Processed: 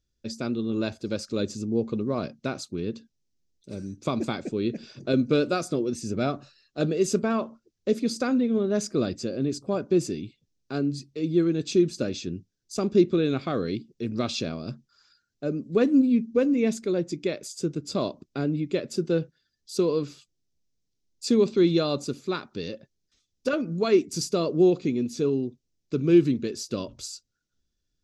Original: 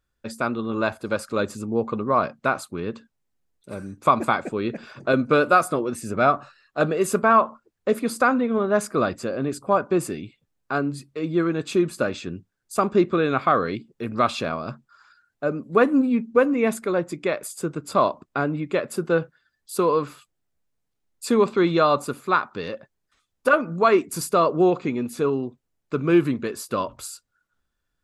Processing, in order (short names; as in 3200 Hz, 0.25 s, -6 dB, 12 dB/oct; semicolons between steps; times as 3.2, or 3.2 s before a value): EQ curve 360 Hz 0 dB, 1100 Hz -18 dB, 5900 Hz +7 dB, 10000 Hz -14 dB